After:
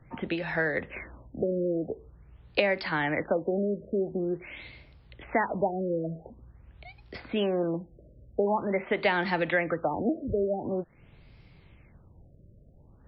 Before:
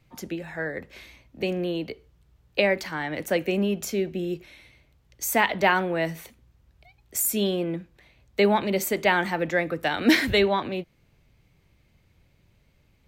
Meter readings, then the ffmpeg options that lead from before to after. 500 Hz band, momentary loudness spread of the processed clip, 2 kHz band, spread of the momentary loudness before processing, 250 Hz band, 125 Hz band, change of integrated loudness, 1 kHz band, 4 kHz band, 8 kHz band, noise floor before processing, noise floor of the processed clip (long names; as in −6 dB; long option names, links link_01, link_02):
−2.5 dB, 15 LU, −4.5 dB, 13 LU, −4.0 dB, −2.5 dB, −4.0 dB, −4.5 dB, −9.5 dB, below −40 dB, −64 dBFS, −57 dBFS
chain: -filter_complex "[0:a]acrossover=split=580|2200[link_01][link_02][link_03];[link_01]acompressor=threshold=-39dB:ratio=4[link_04];[link_02]acompressor=threshold=-36dB:ratio=4[link_05];[link_03]acompressor=threshold=-43dB:ratio=4[link_06];[link_04][link_05][link_06]amix=inputs=3:normalize=0,afftfilt=real='re*lt(b*sr/1024,630*pow(5600/630,0.5+0.5*sin(2*PI*0.46*pts/sr)))':imag='im*lt(b*sr/1024,630*pow(5600/630,0.5+0.5*sin(2*PI*0.46*pts/sr)))':win_size=1024:overlap=0.75,volume=7.5dB"